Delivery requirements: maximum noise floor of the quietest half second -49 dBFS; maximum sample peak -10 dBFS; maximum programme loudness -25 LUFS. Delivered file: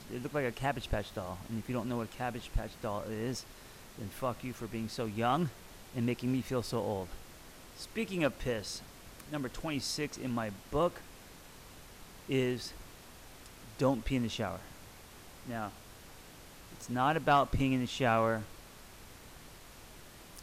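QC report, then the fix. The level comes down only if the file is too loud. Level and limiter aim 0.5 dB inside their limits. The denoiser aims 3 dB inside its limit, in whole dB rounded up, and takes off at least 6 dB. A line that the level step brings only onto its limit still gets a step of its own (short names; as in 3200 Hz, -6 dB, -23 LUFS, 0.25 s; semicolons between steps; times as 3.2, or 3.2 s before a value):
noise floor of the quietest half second -53 dBFS: OK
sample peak -17.0 dBFS: OK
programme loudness -35.0 LUFS: OK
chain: none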